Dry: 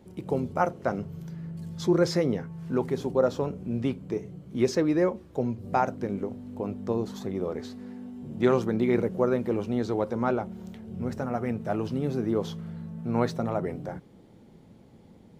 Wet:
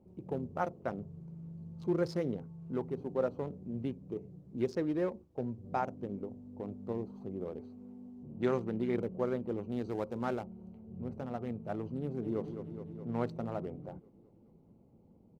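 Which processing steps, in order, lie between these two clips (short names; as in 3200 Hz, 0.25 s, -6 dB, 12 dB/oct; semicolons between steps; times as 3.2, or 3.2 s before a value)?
Wiener smoothing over 25 samples; 2.92–3.75 notches 60/120 Hz; 4.99–5.59 gate -40 dBFS, range -7 dB; 9.72–10.46 high shelf 3900 Hz +10.5 dB; 12–12.42 echo throw 0.21 s, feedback 70%, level -8.5 dB; gain -8.5 dB; Opus 48 kbps 48000 Hz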